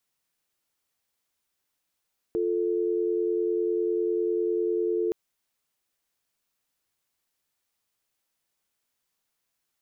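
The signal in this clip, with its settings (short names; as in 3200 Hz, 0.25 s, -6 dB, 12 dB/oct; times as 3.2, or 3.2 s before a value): call progress tone dial tone, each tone -26 dBFS 2.77 s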